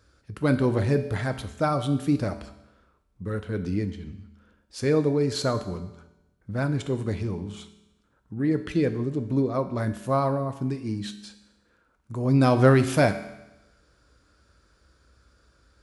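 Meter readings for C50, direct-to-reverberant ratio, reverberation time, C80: 12.0 dB, 8.0 dB, 0.95 s, 13.5 dB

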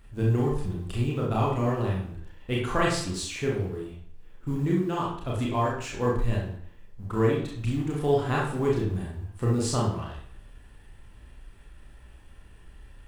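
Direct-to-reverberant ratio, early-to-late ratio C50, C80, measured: -4.0 dB, 3.0 dB, 8.0 dB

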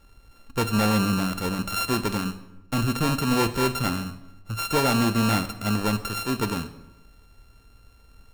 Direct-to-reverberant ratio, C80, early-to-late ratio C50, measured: 10.5 dB, 15.0 dB, 13.5 dB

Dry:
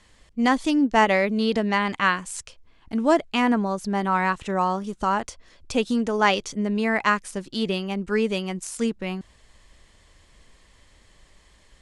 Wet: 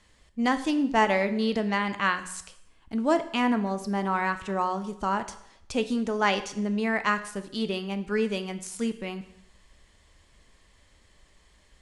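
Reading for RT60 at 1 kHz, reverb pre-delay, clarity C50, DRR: 0.75 s, 4 ms, 13.0 dB, 9.5 dB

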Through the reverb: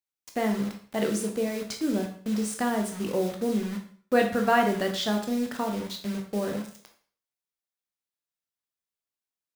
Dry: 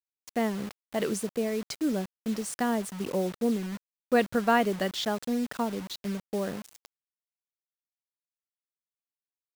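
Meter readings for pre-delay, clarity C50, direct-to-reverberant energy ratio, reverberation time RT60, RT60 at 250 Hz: 7 ms, 7.5 dB, 2.5 dB, 0.50 s, 0.50 s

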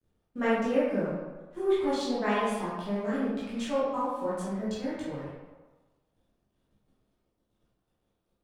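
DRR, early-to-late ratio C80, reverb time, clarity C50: -10.0 dB, 1.5 dB, 1.3 s, -2.0 dB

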